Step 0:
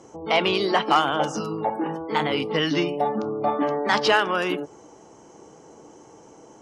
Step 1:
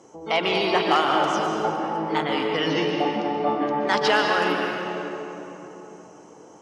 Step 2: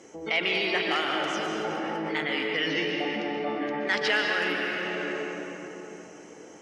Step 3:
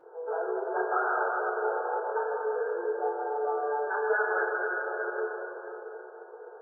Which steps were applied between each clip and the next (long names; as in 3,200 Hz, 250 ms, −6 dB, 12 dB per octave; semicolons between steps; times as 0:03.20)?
high-pass filter 160 Hz 6 dB per octave; convolution reverb RT60 3.5 s, pre-delay 115 ms, DRR 0 dB; level −2 dB
octave-band graphic EQ 125/1,000/2,000 Hz −6/−10/+10 dB; in parallel at −3 dB: compressor whose output falls as the input rises −33 dBFS, ratio −1; on the sum: level −6.5 dB
brick-wall band-pass 350–1,700 Hz; feedback delay network reverb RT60 0.39 s, low-frequency decay 0.75×, high-frequency decay 0.7×, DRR −8 dB; level −7 dB